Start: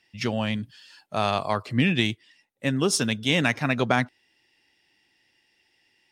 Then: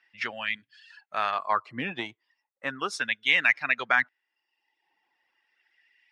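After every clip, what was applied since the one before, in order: reverb removal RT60 0.85 s; LFO band-pass sine 0.36 Hz 930–2100 Hz; gain +7 dB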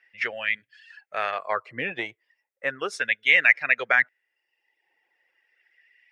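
ten-band EQ 250 Hz -7 dB, 500 Hz +11 dB, 1000 Hz -8 dB, 2000 Hz +8 dB, 4000 Hz -5 dB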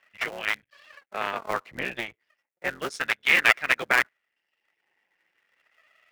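cycle switcher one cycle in 3, muted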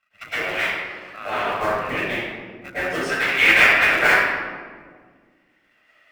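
reverb RT60 1.7 s, pre-delay 0.105 s, DRR -15.5 dB; gain -11.5 dB

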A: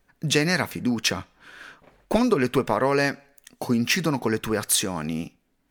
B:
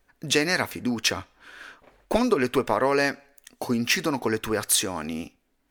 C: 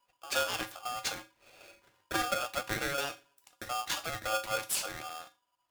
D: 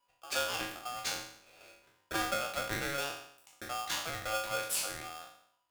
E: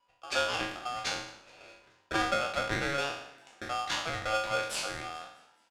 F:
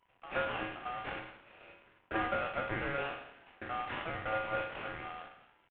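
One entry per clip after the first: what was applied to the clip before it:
bell 160 Hz -10.5 dB 0.67 oct
resonator 220 Hz, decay 0.28 s, harmonics all, mix 80%; polarity switched at an audio rate 980 Hz; gain -1.5 dB
spectral trails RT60 0.66 s; gain -3.5 dB
air absorption 85 m; frequency-shifting echo 0.212 s, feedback 54%, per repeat +65 Hz, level -23.5 dB; gain +5 dB
CVSD 16 kbps; gain -3 dB

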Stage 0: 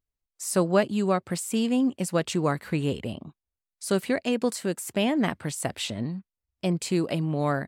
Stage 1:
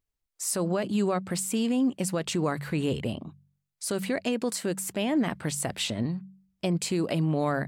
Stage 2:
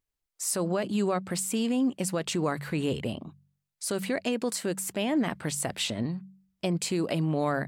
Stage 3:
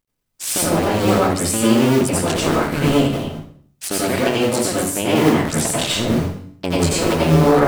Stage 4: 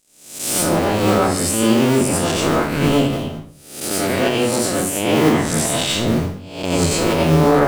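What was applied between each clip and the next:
de-hum 47.62 Hz, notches 4; limiter -20 dBFS, peak gain reduction 11 dB; gain +2 dB
low shelf 180 Hz -3.5 dB
cycle switcher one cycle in 2, muted; reverb RT60 0.55 s, pre-delay 80 ms, DRR -5.5 dB; gain +8 dB
spectral swells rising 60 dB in 0.62 s; gain -1.5 dB

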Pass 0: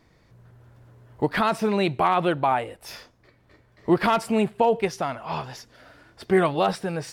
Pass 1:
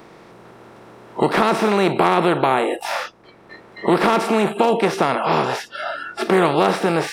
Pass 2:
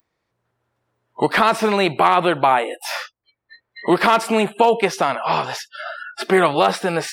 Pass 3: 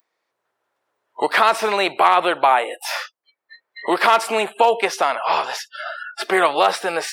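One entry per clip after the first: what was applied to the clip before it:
per-bin compression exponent 0.4; spectral noise reduction 26 dB; three-band squash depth 40%
per-bin expansion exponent 2; low shelf 390 Hz -8.5 dB; gain +8 dB
HPF 470 Hz 12 dB/oct; gain +1 dB

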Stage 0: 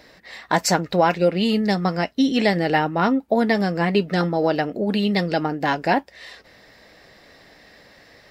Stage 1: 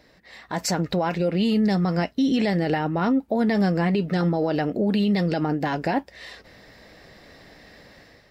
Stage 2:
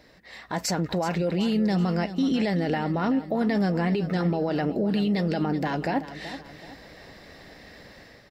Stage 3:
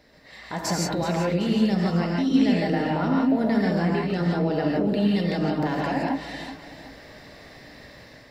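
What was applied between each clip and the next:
low shelf 320 Hz +6.5 dB; limiter -14 dBFS, peak gain reduction 10 dB; AGC gain up to 8 dB; gain -8.5 dB
limiter -19 dBFS, peak gain reduction 4.5 dB; feedback echo 0.378 s, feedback 40%, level -13 dB; gain +1 dB
non-linear reverb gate 0.19 s rising, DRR -2.5 dB; gain -2.5 dB

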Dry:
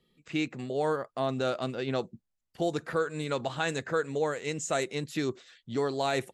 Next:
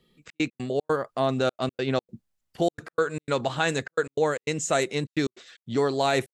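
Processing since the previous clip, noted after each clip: step gate "xxx.x.xx.xxx" 151 bpm -60 dB; gain +5.5 dB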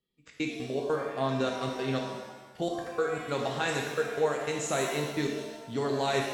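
gate -59 dBFS, range -14 dB; shimmer reverb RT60 1.1 s, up +7 st, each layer -8 dB, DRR 0.5 dB; gain -7 dB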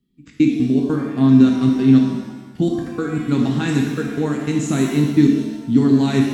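resonant low shelf 380 Hz +12 dB, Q 3; gain +4 dB

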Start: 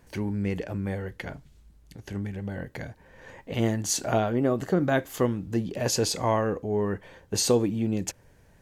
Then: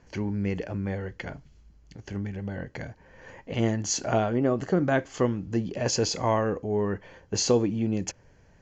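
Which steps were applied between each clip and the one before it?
steep low-pass 7200 Hz 96 dB/oct; notch 3700 Hz, Q 8.1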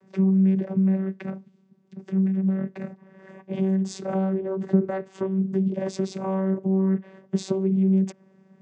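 low shelf 460 Hz +5 dB; compressor 4:1, threshold -24 dBFS, peak gain reduction 8.5 dB; vocoder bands 16, saw 191 Hz; gain +6 dB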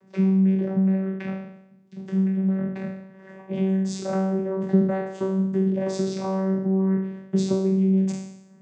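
spectral trails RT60 0.81 s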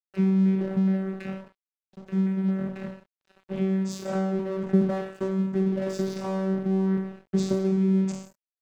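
crossover distortion -39 dBFS; gain -1.5 dB

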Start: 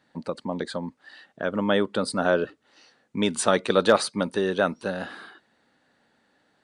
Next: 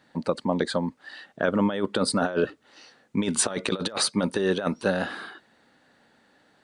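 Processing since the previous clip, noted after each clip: negative-ratio compressor -25 dBFS, ratio -0.5; gain +2 dB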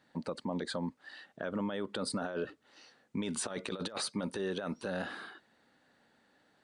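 limiter -18.5 dBFS, peak gain reduction 8.5 dB; gain -7.5 dB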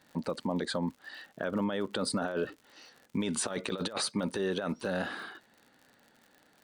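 crackle 73/s -49 dBFS; gain +4 dB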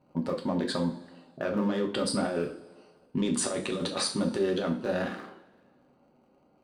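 Wiener smoothing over 25 samples; two-slope reverb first 0.38 s, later 1.6 s, from -19 dB, DRR 1 dB; gain +1.5 dB

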